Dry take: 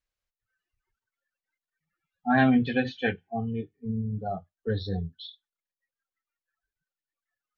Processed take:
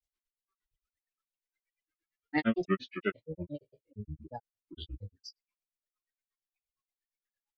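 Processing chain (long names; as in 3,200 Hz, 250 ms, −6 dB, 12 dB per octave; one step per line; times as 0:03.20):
phaser with its sweep stopped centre 380 Hz, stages 4
granular cloud 100 ms, grains 8.6 per second, pitch spread up and down by 7 semitones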